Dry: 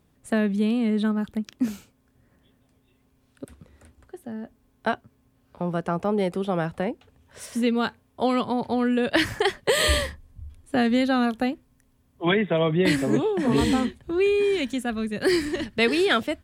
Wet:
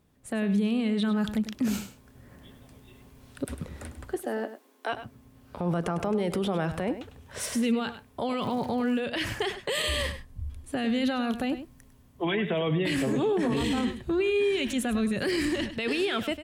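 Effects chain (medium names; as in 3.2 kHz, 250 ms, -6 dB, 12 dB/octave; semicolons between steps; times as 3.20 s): 0.79–1.41 s: peaking EQ 4.4 kHz +5 dB 2.2 oct; 4.16–4.93 s: steep high-pass 290 Hz 36 dB/octave; dynamic bell 2.8 kHz, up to +7 dB, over -42 dBFS, Q 2.9; level rider gain up to 14.5 dB; peak limiter -17.5 dBFS, peak gain reduction 17 dB; 8.40–8.98 s: crackle 170 per s -38 dBFS; delay 101 ms -12 dB; trim -2.5 dB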